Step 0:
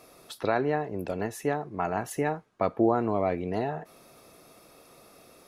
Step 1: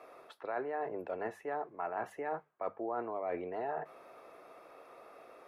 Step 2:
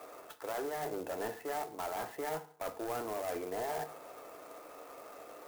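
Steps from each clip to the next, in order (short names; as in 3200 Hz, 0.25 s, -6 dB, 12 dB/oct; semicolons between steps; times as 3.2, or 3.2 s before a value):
three-band isolator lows -19 dB, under 390 Hz, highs -22 dB, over 2300 Hz; notches 50/100/150/200 Hz; reverse; compressor 6:1, threshold -38 dBFS, peak gain reduction 15 dB; reverse; gain +3.5 dB
soft clip -37 dBFS, distortion -10 dB; FDN reverb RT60 0.53 s, low-frequency decay 0.95×, high-frequency decay 0.85×, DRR 8.5 dB; clock jitter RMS 0.048 ms; gain +4 dB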